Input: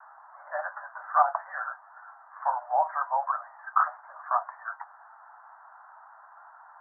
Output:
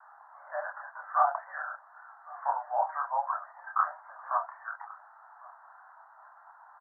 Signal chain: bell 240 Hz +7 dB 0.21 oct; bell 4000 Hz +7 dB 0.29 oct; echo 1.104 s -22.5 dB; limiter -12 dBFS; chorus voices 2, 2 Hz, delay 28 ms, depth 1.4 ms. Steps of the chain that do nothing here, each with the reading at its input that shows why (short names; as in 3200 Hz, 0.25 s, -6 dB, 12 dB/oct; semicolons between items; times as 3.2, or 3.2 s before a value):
bell 240 Hz: input band starts at 510 Hz; bell 4000 Hz: input band ends at 1900 Hz